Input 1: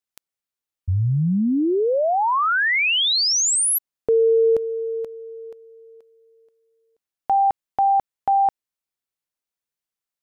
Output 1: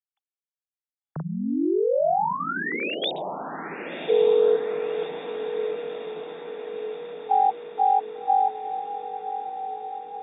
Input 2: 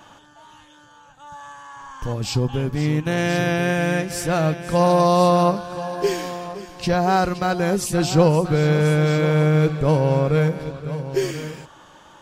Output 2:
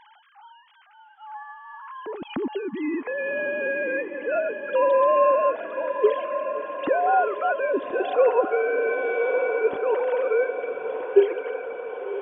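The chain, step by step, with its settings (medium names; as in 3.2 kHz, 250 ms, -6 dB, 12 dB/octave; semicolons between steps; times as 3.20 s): formants replaced by sine waves; echo that smears into a reverb 1145 ms, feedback 63%, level -9 dB; trim -4.5 dB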